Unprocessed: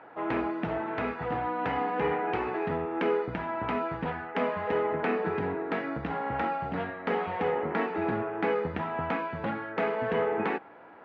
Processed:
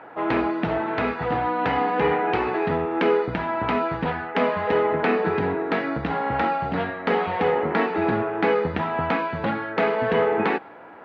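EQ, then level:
dynamic equaliser 4,200 Hz, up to +6 dB, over −59 dBFS, Q 1.9
+7.0 dB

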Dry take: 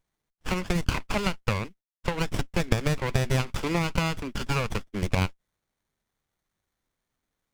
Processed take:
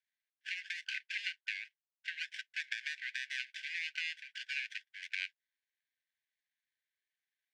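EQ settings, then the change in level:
linear-phase brick-wall high-pass 1,500 Hz
low-pass filter 3,400 Hz 12 dB per octave
−3.0 dB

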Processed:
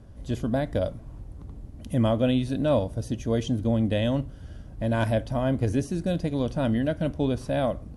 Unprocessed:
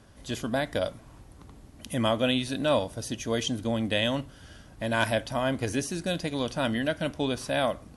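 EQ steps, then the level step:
tilt shelving filter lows +6 dB, about 740 Hz
low-shelf EQ 120 Hz +9.5 dB
parametric band 570 Hz +2.5 dB 0.77 octaves
−2.5 dB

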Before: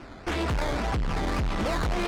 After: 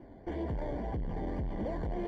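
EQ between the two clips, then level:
moving average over 34 samples
low-shelf EQ 220 Hz −5.5 dB
−3.0 dB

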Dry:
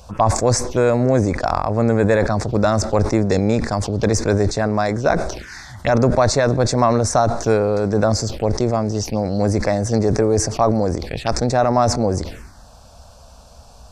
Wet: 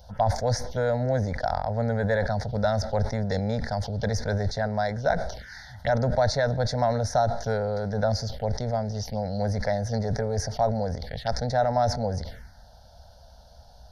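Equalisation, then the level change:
phaser with its sweep stopped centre 1,700 Hz, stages 8
−5.5 dB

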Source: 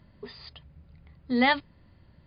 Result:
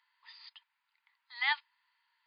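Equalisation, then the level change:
Chebyshev high-pass filter 920 Hz, order 6
parametric band 1,200 Hz −9.5 dB 0.56 octaves
high-shelf EQ 2,800 Hz −8 dB
0.0 dB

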